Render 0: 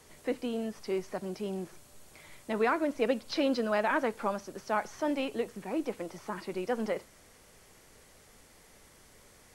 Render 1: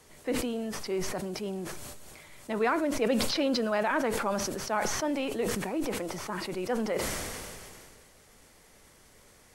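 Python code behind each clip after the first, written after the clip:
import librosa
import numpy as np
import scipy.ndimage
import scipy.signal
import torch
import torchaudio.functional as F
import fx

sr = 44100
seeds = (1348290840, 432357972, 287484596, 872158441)

y = fx.sustainer(x, sr, db_per_s=25.0)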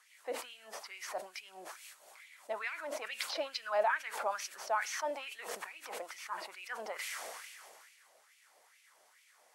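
y = fx.filter_lfo_highpass(x, sr, shape='sine', hz=2.3, low_hz=610.0, high_hz=2500.0, q=3.2)
y = y * 10.0 ** (-9.0 / 20.0)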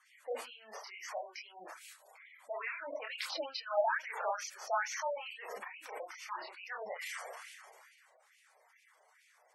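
y = fx.chorus_voices(x, sr, voices=2, hz=0.6, base_ms=29, depth_ms=4.5, mix_pct=45)
y = fx.spec_gate(y, sr, threshold_db=-15, keep='strong')
y = y * 10.0 ** (3.0 / 20.0)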